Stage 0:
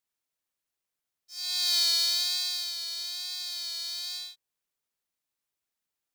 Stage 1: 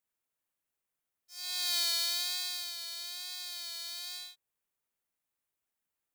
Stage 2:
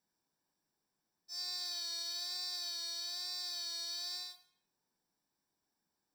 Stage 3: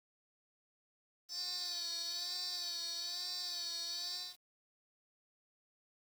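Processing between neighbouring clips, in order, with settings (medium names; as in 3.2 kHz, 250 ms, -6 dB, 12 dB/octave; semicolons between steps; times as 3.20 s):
peaking EQ 4.8 kHz -7.5 dB 1.1 oct
peak limiter -28.5 dBFS, peak gain reduction 11 dB; reverberation RT60 0.70 s, pre-delay 3 ms, DRR 9.5 dB; compression 2:1, threshold -39 dBFS, peak gain reduction 6 dB; trim -3 dB
small samples zeroed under -54.5 dBFS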